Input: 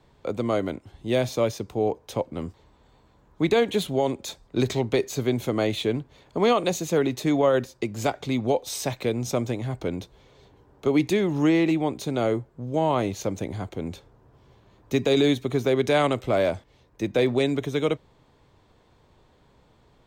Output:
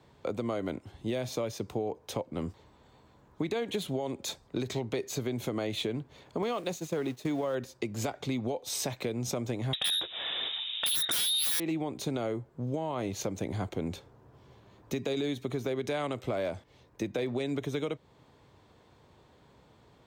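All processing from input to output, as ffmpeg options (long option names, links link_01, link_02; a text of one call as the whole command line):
ffmpeg -i in.wav -filter_complex "[0:a]asettb=1/sr,asplit=3[link_01][link_02][link_03];[link_01]atrim=end=6.424[link_04];[link_02]atrim=start=6.42:end=7.55,asetpts=PTS-STARTPTS,afade=type=in:duration=0.004:curve=qsin,afade=type=out:start_time=1.126:duration=0.004:curve=qsin,aeval=exprs='val(0)+0.5*0.0168*sgn(val(0))':channel_layout=same,agate=range=-33dB:threshold=-23dB:ratio=3:release=100:detection=peak[link_05];[link_03]atrim=start=7.546[link_06];[link_04][link_05]acrossfade=duration=0.004:curve1=hsin:curve2=qsin[link_07];[link_07][link_06]acrossfade=duration=0.004:curve1=qsin:curve2=hsin,asettb=1/sr,asplit=3[link_08][link_09][link_10];[link_08]atrim=end=9.734[link_11];[link_09]atrim=start=9.73:end=11.6,asetpts=PTS-STARTPTS,afade=type=in:duration=0.004:curve=qsin,afade=type=out:start_time=1.866:duration=0.004:curve=qsin,highpass=frequency=200:width=0.5412,highpass=frequency=200:width=1.3066,lowpass=frequency=3400:width_type=q:width=0.5098,lowpass=frequency=3400:width_type=q:width=0.6013,lowpass=frequency=3400:width_type=q:width=0.9,lowpass=frequency=3400:width_type=q:width=2.563,afreqshift=-4000,aeval=exprs='0.335*sin(PI/2*8.91*val(0)/0.335)':channel_layout=same[link_12];[link_10]atrim=start=11.596[link_13];[link_11][link_12]acrossfade=duration=0.004:curve1=hsin:curve2=qsin[link_14];[link_14][link_13]acrossfade=duration=0.004:curve1=qsin:curve2=hsin,highpass=70,alimiter=limit=-19dB:level=0:latency=1:release=273,acompressor=threshold=-28dB:ratio=6" out.wav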